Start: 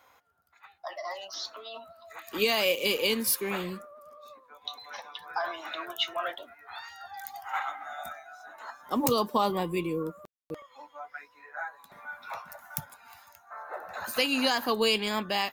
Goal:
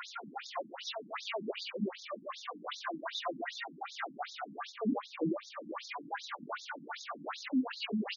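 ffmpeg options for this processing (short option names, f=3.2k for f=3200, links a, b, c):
-af "aeval=exprs='val(0)+0.5*0.0447*sgn(val(0))':c=same,lowshelf=f=310:g=10,aecho=1:1:304|608|912:0.422|0.0717|0.0122,atempo=1.9,alimiter=limit=-17dB:level=0:latency=1:release=41,highshelf=f=6k:g=-4,afftfilt=real='re*between(b*sr/1024,220*pow(5000/220,0.5+0.5*sin(2*PI*2.6*pts/sr))/1.41,220*pow(5000/220,0.5+0.5*sin(2*PI*2.6*pts/sr))*1.41)':imag='im*between(b*sr/1024,220*pow(5000/220,0.5+0.5*sin(2*PI*2.6*pts/sr))/1.41,220*pow(5000/220,0.5+0.5*sin(2*PI*2.6*pts/sr))*1.41)':win_size=1024:overlap=0.75,volume=-3.5dB"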